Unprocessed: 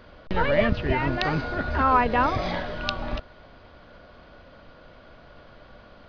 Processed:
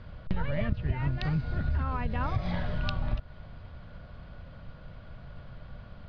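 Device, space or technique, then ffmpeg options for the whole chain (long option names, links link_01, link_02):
jukebox: -filter_complex "[0:a]lowpass=5300,lowshelf=frequency=210:width_type=q:width=1.5:gain=11.5,acompressor=threshold=-21dB:ratio=6,asettb=1/sr,asplit=3[link_01][link_02][link_03];[link_01]atrim=end=1.114[link_04];[link_02]atrim=start=1.11:end=2.21,asetpts=PTS-STARTPTS,afade=type=in:duration=0.004:curve=qsin,afade=type=out:start_time=1.096:duration=0.004:curve=qsin,equalizer=frequency=940:width=0.63:gain=-5.5[link_05];[link_03]atrim=start=2.206[link_06];[link_04][link_05]acrossfade=duration=0.004:curve1=hsin:curve2=qsin[link_07];[link_07][link_06]acrossfade=duration=0.004:curve1=qsin:curve2=hsin,volume=-4dB"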